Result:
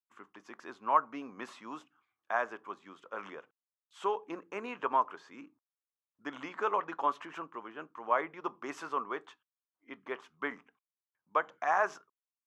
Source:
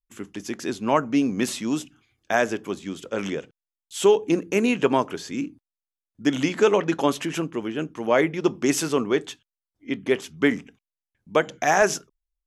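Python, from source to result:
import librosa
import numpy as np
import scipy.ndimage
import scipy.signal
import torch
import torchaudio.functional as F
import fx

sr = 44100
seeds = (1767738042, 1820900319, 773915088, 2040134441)

y = fx.bandpass_q(x, sr, hz=1100.0, q=3.5)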